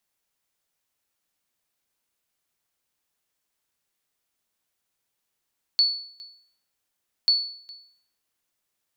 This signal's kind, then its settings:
ping with an echo 4,440 Hz, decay 0.58 s, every 1.49 s, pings 2, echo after 0.41 s, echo −22.5 dB −13 dBFS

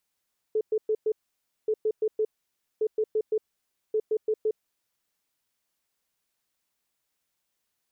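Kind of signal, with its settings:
beeps in groups sine 433 Hz, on 0.06 s, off 0.11 s, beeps 4, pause 0.56 s, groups 4, −21.5 dBFS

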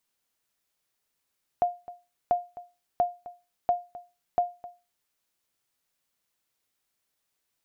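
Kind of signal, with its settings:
ping with an echo 707 Hz, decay 0.28 s, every 0.69 s, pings 5, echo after 0.26 s, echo −18 dB −15.5 dBFS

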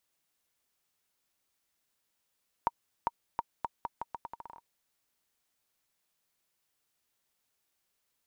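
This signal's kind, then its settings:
bouncing ball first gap 0.40 s, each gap 0.8, 936 Hz, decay 34 ms −14.5 dBFS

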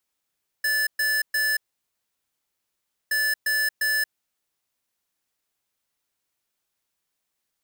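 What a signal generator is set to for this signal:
beeps in groups square 1,740 Hz, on 0.23 s, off 0.12 s, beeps 3, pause 1.54 s, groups 2, −23 dBFS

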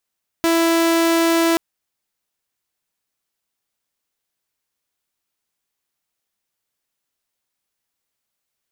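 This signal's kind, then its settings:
tone saw 332 Hz −11.5 dBFS 1.13 s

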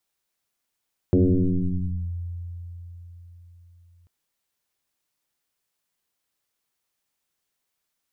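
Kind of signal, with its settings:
two-operator FM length 2.94 s, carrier 86.8 Hz, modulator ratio 1.06, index 3.8, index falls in 1.00 s linear, decay 4.36 s, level −13.5 dB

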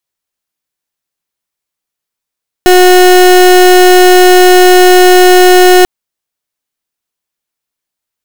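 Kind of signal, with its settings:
pulse wave 364 Hz, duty 31% −3 dBFS 3.19 s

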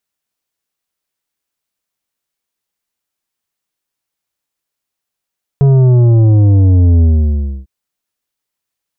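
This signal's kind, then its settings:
bass drop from 140 Hz, over 2.05 s, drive 9 dB, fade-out 0.64 s, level −6 dB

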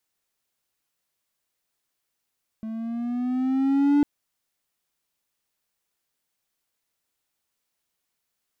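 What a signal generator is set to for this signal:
pitch glide with a swell triangle, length 1.40 s, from 219 Hz, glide +5 semitones, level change +15 dB, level −13 dB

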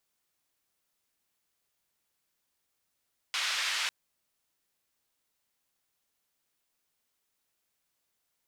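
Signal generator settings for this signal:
band-limited noise 1,600–3,600 Hz, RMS −31.5 dBFS 0.55 s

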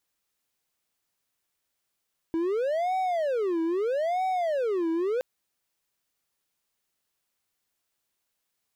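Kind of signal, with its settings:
siren wail 326–754 Hz 0.78 per second triangle −22 dBFS 2.87 s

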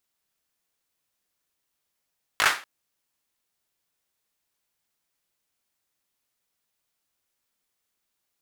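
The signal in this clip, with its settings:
synth clap length 0.24 s, apart 19 ms, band 1,500 Hz, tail 0.32 s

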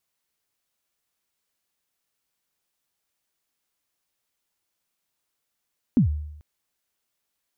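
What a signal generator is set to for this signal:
synth kick length 0.44 s, from 280 Hz, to 75 Hz, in 110 ms, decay 0.82 s, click off, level −12 dB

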